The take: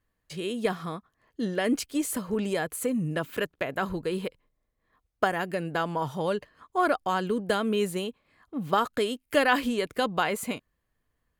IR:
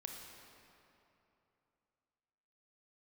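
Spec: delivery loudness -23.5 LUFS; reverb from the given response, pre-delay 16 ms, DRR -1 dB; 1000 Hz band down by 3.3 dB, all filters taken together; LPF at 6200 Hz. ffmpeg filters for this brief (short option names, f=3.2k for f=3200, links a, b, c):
-filter_complex "[0:a]lowpass=6.2k,equalizer=f=1k:t=o:g=-4.5,asplit=2[a][b];[1:a]atrim=start_sample=2205,adelay=16[c];[b][c]afir=irnorm=-1:irlink=0,volume=3.5dB[d];[a][d]amix=inputs=2:normalize=0,volume=3dB"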